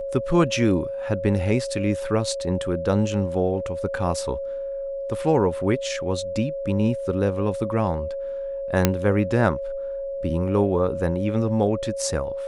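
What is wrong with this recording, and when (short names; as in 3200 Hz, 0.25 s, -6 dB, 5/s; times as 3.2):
tone 550 Hz -27 dBFS
8.85 pop -2 dBFS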